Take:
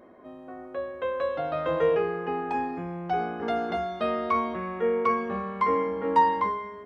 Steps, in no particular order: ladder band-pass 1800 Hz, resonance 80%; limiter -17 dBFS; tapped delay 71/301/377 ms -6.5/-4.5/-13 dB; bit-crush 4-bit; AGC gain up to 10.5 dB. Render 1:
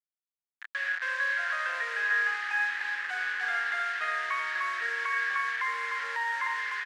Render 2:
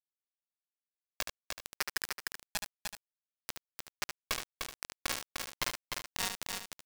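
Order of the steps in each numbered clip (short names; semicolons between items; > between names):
tapped delay > limiter > AGC > bit-crush > ladder band-pass; limiter > AGC > ladder band-pass > bit-crush > tapped delay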